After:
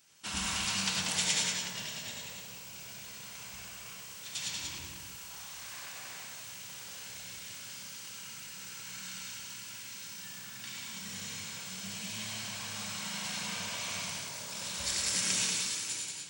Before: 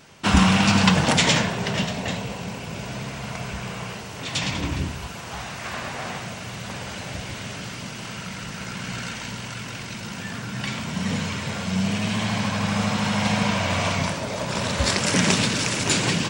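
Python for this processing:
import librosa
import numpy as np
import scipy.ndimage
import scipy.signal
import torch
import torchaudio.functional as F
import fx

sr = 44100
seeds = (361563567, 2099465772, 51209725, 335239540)

p1 = fx.fade_out_tail(x, sr, length_s=0.87)
p2 = scipy.signal.lfilter([1.0, -0.9], [1.0], p1)
p3 = p2 + fx.echo_single(p2, sr, ms=187, db=-4.0, dry=0)
p4 = fx.rev_gated(p3, sr, seeds[0], gate_ms=130, shape='rising', drr_db=0.0)
y = F.gain(torch.from_numpy(p4), -7.5).numpy()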